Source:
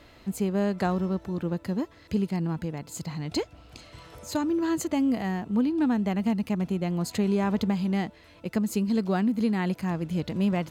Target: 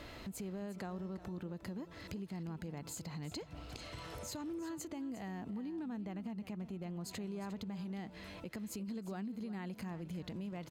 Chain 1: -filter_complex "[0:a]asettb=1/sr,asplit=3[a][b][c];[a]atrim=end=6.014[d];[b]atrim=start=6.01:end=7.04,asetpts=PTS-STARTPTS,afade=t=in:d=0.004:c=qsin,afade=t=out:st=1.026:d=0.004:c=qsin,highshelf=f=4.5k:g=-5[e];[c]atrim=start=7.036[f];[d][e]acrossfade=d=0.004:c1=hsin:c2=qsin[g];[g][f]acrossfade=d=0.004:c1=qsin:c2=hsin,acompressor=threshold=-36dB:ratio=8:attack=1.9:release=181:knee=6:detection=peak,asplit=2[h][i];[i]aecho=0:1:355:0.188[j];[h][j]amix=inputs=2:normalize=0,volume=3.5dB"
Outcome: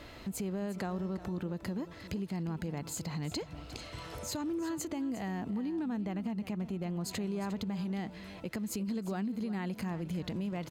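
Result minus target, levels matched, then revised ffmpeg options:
compressor: peak gain reduction -7 dB
-filter_complex "[0:a]asettb=1/sr,asplit=3[a][b][c];[a]atrim=end=6.014[d];[b]atrim=start=6.01:end=7.04,asetpts=PTS-STARTPTS,afade=t=in:d=0.004:c=qsin,afade=t=out:st=1.026:d=0.004:c=qsin,highshelf=f=4.5k:g=-5[e];[c]atrim=start=7.036[f];[d][e]acrossfade=d=0.004:c1=hsin:c2=qsin[g];[g][f]acrossfade=d=0.004:c1=qsin:c2=hsin,acompressor=threshold=-44dB:ratio=8:attack=1.9:release=181:knee=6:detection=peak,asplit=2[h][i];[i]aecho=0:1:355:0.188[j];[h][j]amix=inputs=2:normalize=0,volume=3.5dB"

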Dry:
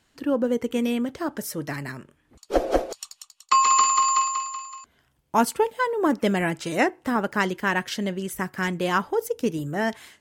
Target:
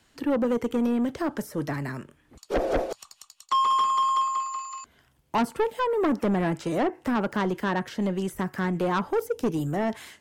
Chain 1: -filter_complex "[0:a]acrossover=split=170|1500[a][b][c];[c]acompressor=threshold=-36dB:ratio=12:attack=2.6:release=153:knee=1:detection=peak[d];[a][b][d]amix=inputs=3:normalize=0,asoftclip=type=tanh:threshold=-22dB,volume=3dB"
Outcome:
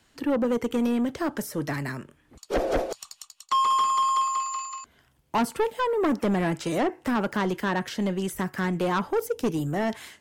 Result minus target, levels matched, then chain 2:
compressor: peak gain reduction -6.5 dB
-filter_complex "[0:a]acrossover=split=170|1500[a][b][c];[c]acompressor=threshold=-43dB:ratio=12:attack=2.6:release=153:knee=1:detection=peak[d];[a][b][d]amix=inputs=3:normalize=0,asoftclip=type=tanh:threshold=-22dB,volume=3dB"

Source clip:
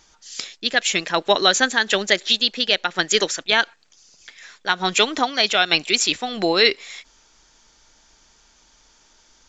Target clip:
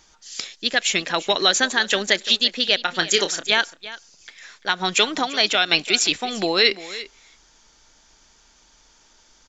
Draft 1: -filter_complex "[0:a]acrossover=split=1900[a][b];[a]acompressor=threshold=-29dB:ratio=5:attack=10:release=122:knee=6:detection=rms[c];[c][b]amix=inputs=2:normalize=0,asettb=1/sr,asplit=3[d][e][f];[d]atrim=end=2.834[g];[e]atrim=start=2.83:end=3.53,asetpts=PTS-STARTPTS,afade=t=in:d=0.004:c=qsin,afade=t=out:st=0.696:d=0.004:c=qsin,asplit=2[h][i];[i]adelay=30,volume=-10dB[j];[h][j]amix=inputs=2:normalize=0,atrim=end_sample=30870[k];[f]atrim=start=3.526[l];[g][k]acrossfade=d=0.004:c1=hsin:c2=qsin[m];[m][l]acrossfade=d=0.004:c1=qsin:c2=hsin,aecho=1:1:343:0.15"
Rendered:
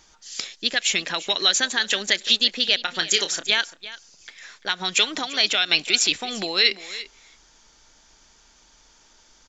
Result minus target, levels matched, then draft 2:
compressor: peak gain reduction +9 dB
-filter_complex "[0:a]acrossover=split=1900[a][b];[a]acompressor=threshold=-17.5dB:ratio=5:attack=10:release=122:knee=6:detection=rms[c];[c][b]amix=inputs=2:normalize=0,asettb=1/sr,asplit=3[d][e][f];[d]atrim=end=2.834[g];[e]atrim=start=2.83:end=3.53,asetpts=PTS-STARTPTS,afade=t=in:d=0.004:c=qsin,afade=t=out:st=0.696:d=0.004:c=qsin,asplit=2[h][i];[i]adelay=30,volume=-10dB[j];[h][j]amix=inputs=2:normalize=0,atrim=end_sample=30870[k];[f]atrim=start=3.526[l];[g][k]acrossfade=d=0.004:c1=hsin:c2=qsin[m];[m][l]acrossfade=d=0.004:c1=qsin:c2=hsin,aecho=1:1:343:0.15"

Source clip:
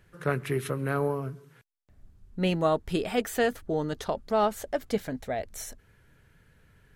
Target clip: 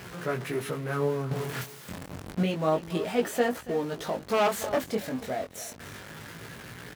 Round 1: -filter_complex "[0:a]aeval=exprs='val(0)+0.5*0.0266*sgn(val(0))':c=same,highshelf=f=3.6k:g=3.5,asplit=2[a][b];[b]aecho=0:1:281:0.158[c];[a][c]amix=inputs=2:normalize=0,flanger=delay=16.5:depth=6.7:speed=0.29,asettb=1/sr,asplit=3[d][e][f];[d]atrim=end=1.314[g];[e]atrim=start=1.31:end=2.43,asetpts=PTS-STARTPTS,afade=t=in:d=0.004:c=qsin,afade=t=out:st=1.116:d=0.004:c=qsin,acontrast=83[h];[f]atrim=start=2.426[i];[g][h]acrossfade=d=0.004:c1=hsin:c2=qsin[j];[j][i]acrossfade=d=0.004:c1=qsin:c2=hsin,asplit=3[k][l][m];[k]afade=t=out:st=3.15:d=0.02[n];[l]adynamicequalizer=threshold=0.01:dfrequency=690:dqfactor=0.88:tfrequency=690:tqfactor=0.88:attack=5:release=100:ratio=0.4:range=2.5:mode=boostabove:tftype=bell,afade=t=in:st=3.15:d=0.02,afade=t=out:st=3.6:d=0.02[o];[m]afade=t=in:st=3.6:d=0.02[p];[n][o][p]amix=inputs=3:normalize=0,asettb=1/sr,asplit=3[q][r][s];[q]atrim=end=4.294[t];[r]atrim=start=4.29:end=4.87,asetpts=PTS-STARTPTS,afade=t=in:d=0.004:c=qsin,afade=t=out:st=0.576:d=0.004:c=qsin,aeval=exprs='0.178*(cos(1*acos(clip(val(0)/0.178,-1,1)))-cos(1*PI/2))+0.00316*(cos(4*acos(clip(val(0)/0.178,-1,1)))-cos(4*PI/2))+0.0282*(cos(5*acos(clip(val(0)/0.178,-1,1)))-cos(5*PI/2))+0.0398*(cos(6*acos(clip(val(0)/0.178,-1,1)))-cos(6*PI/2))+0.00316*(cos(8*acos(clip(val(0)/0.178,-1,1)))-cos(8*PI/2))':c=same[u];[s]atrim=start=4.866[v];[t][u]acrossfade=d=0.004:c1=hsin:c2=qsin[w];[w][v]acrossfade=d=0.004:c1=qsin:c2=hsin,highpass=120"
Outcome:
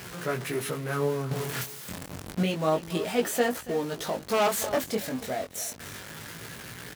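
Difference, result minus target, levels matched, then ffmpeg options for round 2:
8000 Hz band +5.5 dB
-filter_complex "[0:a]aeval=exprs='val(0)+0.5*0.0266*sgn(val(0))':c=same,highshelf=f=3.6k:g=-4,asplit=2[a][b];[b]aecho=0:1:281:0.158[c];[a][c]amix=inputs=2:normalize=0,flanger=delay=16.5:depth=6.7:speed=0.29,asettb=1/sr,asplit=3[d][e][f];[d]atrim=end=1.314[g];[e]atrim=start=1.31:end=2.43,asetpts=PTS-STARTPTS,afade=t=in:d=0.004:c=qsin,afade=t=out:st=1.116:d=0.004:c=qsin,acontrast=83[h];[f]atrim=start=2.426[i];[g][h]acrossfade=d=0.004:c1=hsin:c2=qsin[j];[j][i]acrossfade=d=0.004:c1=qsin:c2=hsin,asplit=3[k][l][m];[k]afade=t=out:st=3.15:d=0.02[n];[l]adynamicequalizer=threshold=0.01:dfrequency=690:dqfactor=0.88:tfrequency=690:tqfactor=0.88:attack=5:release=100:ratio=0.4:range=2.5:mode=boostabove:tftype=bell,afade=t=in:st=3.15:d=0.02,afade=t=out:st=3.6:d=0.02[o];[m]afade=t=in:st=3.6:d=0.02[p];[n][o][p]amix=inputs=3:normalize=0,asettb=1/sr,asplit=3[q][r][s];[q]atrim=end=4.294[t];[r]atrim=start=4.29:end=4.87,asetpts=PTS-STARTPTS,afade=t=in:d=0.004:c=qsin,afade=t=out:st=0.576:d=0.004:c=qsin,aeval=exprs='0.178*(cos(1*acos(clip(val(0)/0.178,-1,1)))-cos(1*PI/2))+0.00316*(cos(4*acos(clip(val(0)/0.178,-1,1)))-cos(4*PI/2))+0.0282*(cos(5*acos(clip(val(0)/0.178,-1,1)))-cos(5*PI/2))+0.0398*(cos(6*acos(clip(val(0)/0.178,-1,1)))-cos(6*PI/2))+0.00316*(cos(8*acos(clip(val(0)/0.178,-1,1)))-cos(8*PI/2))':c=same[u];[s]atrim=start=4.866[v];[t][u]acrossfade=d=0.004:c1=hsin:c2=qsin[w];[w][v]acrossfade=d=0.004:c1=qsin:c2=hsin,highpass=120"

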